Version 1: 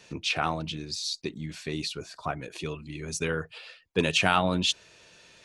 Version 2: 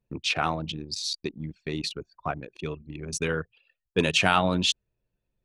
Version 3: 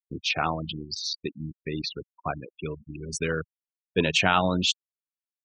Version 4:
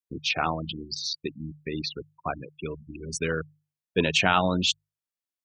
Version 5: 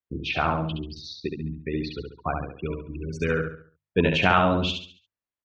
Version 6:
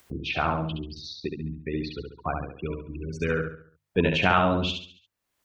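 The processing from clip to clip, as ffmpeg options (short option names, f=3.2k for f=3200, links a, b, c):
-af "anlmdn=3.98,volume=1.5dB"
-af "afftfilt=real='re*gte(hypot(re,im),0.0251)':imag='im*gte(hypot(re,im),0.0251)':win_size=1024:overlap=0.75"
-af "bandreject=f=50:t=h:w=6,bandreject=f=100:t=h:w=6,bandreject=f=150:t=h:w=6"
-af "lowpass=2.4k,equalizer=f=66:t=o:w=1.1:g=8.5,aecho=1:1:69|138|207|276|345:0.562|0.208|0.077|0.0285|0.0105,volume=2dB"
-af "acompressor=mode=upward:threshold=-33dB:ratio=2.5,volume=-1.5dB"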